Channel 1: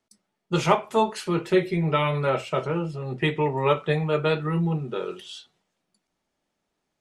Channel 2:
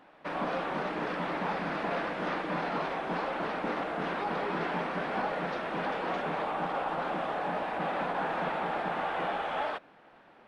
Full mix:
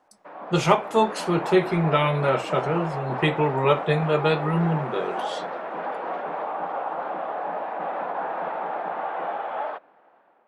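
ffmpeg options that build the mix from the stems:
-filter_complex "[0:a]volume=1.5dB[a];[1:a]dynaudnorm=f=370:g=5:m=9dB,bandpass=f=750:t=q:w=0.99:csg=0,volume=-4.5dB[b];[a][b]amix=inputs=2:normalize=0"

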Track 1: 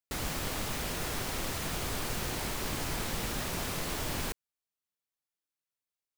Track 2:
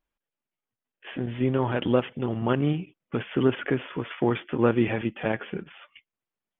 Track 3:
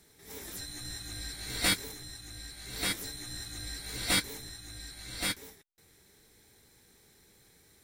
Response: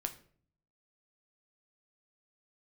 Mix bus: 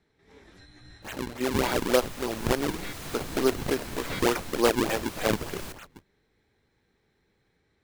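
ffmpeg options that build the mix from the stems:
-filter_complex "[0:a]adelay=1400,volume=-4.5dB,asplit=2[a][b];[b]volume=-5.5dB[c];[1:a]highpass=390,acrusher=samples=40:mix=1:aa=0.000001:lfo=1:lforange=64:lforate=3.4,volume=2.5dB,asplit=2[d][e];[2:a]lowpass=2.7k,volume=-5.5dB[f];[e]apad=whole_len=333955[g];[a][g]sidechaincompress=threshold=-36dB:ratio=3:attack=7.6:release=562[h];[3:a]atrim=start_sample=2205[i];[c][i]afir=irnorm=-1:irlink=0[j];[h][d][f][j]amix=inputs=4:normalize=0"

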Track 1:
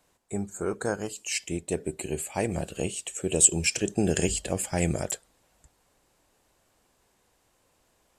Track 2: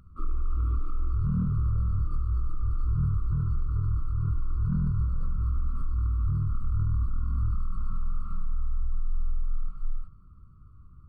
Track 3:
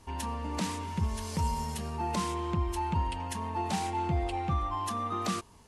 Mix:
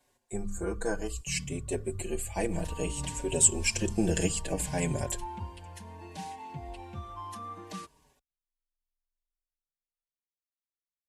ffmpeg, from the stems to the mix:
-filter_complex "[0:a]bandreject=f=50:t=h:w=6,bandreject=f=100:t=h:w=6,bandreject=f=150:t=h:w=6,bandreject=f=200:t=h:w=6,volume=0dB,asplit=2[a][b];[1:a]volume=-10.5dB[c];[2:a]adelay=2450,volume=-6.5dB[d];[b]apad=whole_len=488864[e];[c][e]sidechaingate=range=-54dB:threshold=-40dB:ratio=16:detection=peak[f];[a][f][d]amix=inputs=3:normalize=0,asuperstop=centerf=1300:order=12:qfactor=7.8,asplit=2[g][h];[h]adelay=5,afreqshift=-0.6[i];[g][i]amix=inputs=2:normalize=1"

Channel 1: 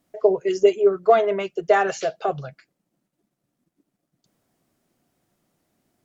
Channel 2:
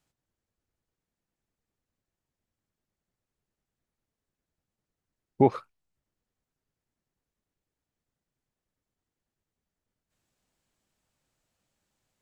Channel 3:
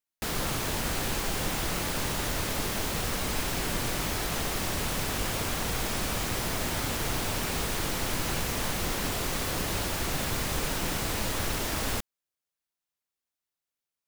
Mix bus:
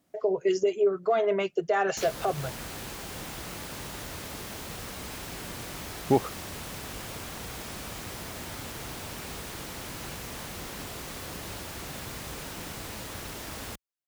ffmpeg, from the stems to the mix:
-filter_complex "[0:a]volume=-0.5dB[a];[1:a]adelay=700,volume=-2dB[b];[2:a]adelay=1750,volume=-8dB[c];[a][c]amix=inputs=2:normalize=0,highpass=46,alimiter=limit=-16dB:level=0:latency=1:release=178,volume=0dB[d];[b][d]amix=inputs=2:normalize=0"

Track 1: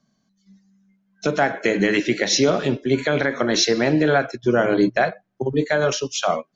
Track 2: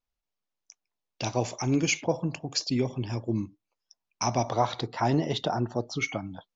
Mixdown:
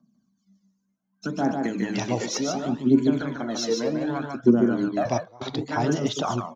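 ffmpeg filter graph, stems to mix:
-filter_complex "[0:a]equalizer=f=125:t=o:w=1:g=-5,equalizer=f=250:t=o:w=1:g=10,equalizer=f=500:t=o:w=1:g=-7,equalizer=f=1k:t=o:w=1:g=5,equalizer=f=2k:t=o:w=1:g=-11,equalizer=f=4k:t=o:w=1:g=-5,aphaser=in_gain=1:out_gain=1:delay=2.2:decay=0.7:speed=0.67:type=triangular,volume=-9.5dB,asplit=3[a][b][c];[b]volume=-4dB[d];[1:a]adelay=750,volume=0dB,asplit=3[e][f][g];[e]atrim=end=2.37,asetpts=PTS-STARTPTS,afade=t=out:st=2.366:d=0.004:c=hsin[h];[f]atrim=start=2.37:end=5.05,asetpts=PTS-STARTPTS,volume=0[i];[g]atrim=start=5.05,asetpts=PTS-STARTPTS,afade=t=in:d=0.004:c=hsin[j];[h][i][j]concat=n=3:v=0:a=1[k];[c]apad=whole_len=322118[l];[k][l]sidechaingate=range=-25dB:threshold=-40dB:ratio=16:detection=peak[m];[d]aecho=0:1:147:1[n];[a][m][n]amix=inputs=3:normalize=0,highpass=66"

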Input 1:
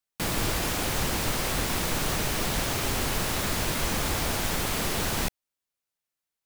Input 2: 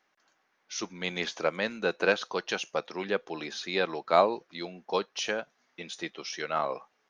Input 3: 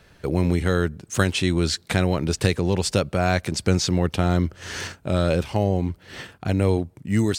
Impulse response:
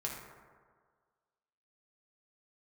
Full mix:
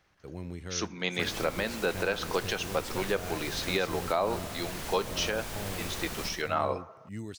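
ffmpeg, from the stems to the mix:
-filter_complex "[0:a]adelay=1000,volume=-11dB,asplit=2[a][b];[b]volume=-4dB[c];[1:a]volume=1dB,asplit=3[d][e][f];[e]volume=-15.5dB[g];[2:a]volume=-19dB[h];[f]apad=whole_len=328578[i];[a][i]sidechaincompress=threshold=-31dB:ratio=8:attack=47:release=664[j];[3:a]atrim=start_sample=2205[k];[g][k]afir=irnorm=-1:irlink=0[l];[c]aecho=0:1:66|132|198|264|330|396|462|528:1|0.54|0.292|0.157|0.085|0.0459|0.0248|0.0134[m];[j][d][h][l][m]amix=inputs=5:normalize=0,alimiter=limit=-16dB:level=0:latency=1:release=132"

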